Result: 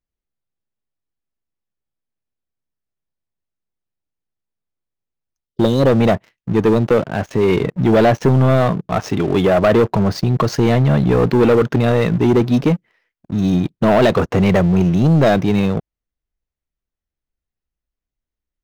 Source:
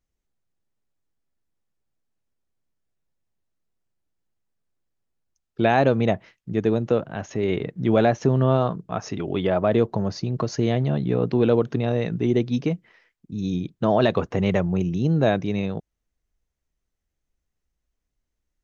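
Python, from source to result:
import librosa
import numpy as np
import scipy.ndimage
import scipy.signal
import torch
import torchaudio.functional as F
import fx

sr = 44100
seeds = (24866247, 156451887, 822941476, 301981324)

y = scipy.ndimage.median_filter(x, 5, mode='constant')
y = fx.spec_erase(y, sr, start_s=5.46, length_s=0.43, low_hz=580.0, high_hz=2900.0)
y = fx.dynamic_eq(y, sr, hz=1500.0, q=1.3, threshold_db=-39.0, ratio=4.0, max_db=5, at=(9.59, 12.06))
y = fx.leveller(y, sr, passes=3)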